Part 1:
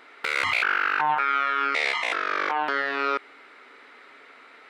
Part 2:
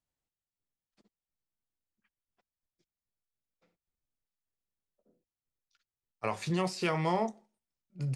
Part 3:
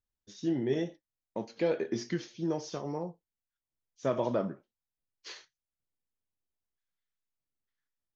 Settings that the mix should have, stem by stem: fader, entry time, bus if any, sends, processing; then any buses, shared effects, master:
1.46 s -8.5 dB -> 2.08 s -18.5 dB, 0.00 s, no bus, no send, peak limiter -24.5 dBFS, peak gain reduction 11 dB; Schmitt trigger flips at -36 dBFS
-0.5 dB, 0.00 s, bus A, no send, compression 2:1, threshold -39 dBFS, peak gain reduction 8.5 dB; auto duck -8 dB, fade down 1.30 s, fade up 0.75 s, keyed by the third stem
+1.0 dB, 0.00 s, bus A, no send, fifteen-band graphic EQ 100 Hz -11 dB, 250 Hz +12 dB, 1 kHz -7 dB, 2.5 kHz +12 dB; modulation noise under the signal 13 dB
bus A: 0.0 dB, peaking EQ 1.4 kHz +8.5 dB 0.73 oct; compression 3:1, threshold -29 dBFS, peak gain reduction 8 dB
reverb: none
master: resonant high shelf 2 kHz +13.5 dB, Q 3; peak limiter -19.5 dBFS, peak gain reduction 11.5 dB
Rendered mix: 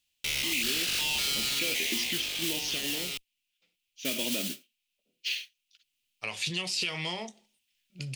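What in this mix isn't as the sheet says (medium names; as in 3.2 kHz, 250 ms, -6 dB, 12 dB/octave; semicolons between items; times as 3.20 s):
stem 1: missing peak limiter -24.5 dBFS, peak gain reduction 11 dB; stem 3 +1.0 dB -> -7.0 dB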